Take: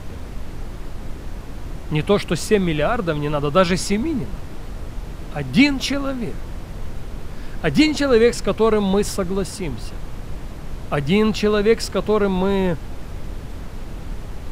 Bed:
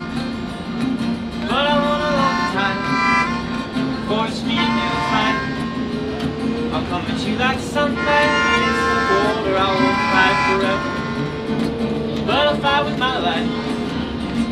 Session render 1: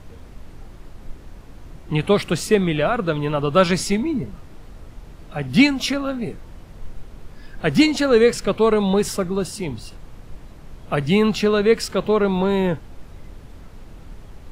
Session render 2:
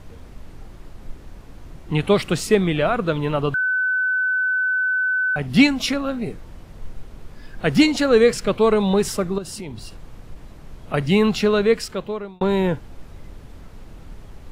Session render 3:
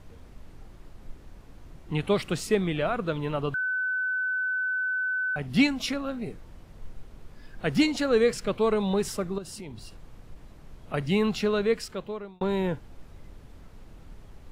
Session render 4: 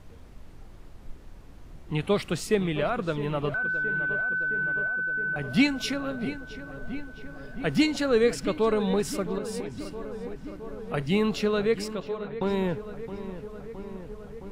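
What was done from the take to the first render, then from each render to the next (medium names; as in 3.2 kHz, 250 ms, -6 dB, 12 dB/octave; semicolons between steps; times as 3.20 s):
noise print and reduce 9 dB
3.54–5.36 s: bleep 1.51 kHz -17.5 dBFS; 9.38–10.94 s: compression, threshold -28 dBFS; 11.58–12.41 s: fade out
trim -7.5 dB
filtered feedback delay 666 ms, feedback 77%, low-pass 2.6 kHz, level -12.5 dB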